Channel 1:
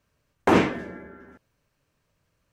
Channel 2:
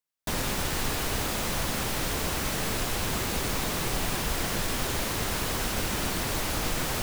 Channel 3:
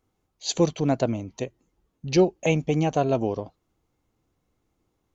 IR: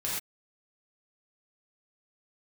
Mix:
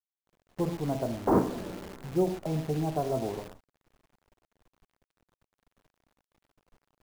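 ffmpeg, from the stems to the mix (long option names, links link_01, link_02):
-filter_complex "[0:a]asoftclip=type=hard:threshold=-16dB,adelay=800,volume=-1dB,asplit=2[link_01][link_02];[link_02]volume=-20.5dB[link_03];[1:a]asoftclip=type=tanh:threshold=-26.5dB,volume=-17dB[link_04];[2:a]highshelf=frequency=2300:gain=11,bandreject=frequency=490:width=12,volume=-10.5dB,asplit=3[link_05][link_06][link_07];[link_06]volume=-9dB[link_08];[link_07]apad=whole_len=146413[link_09];[link_01][link_09]sidechaincompress=threshold=-41dB:ratio=8:attack=11:release=276[link_10];[3:a]atrim=start_sample=2205[link_11];[link_03][link_08]amix=inputs=2:normalize=0[link_12];[link_12][link_11]afir=irnorm=-1:irlink=0[link_13];[link_10][link_04][link_05][link_13]amix=inputs=4:normalize=0,lowpass=frequency=1100:width=0.5412,lowpass=frequency=1100:width=1.3066,agate=range=-20dB:threshold=-47dB:ratio=16:detection=peak,acrusher=bits=8:dc=4:mix=0:aa=0.000001"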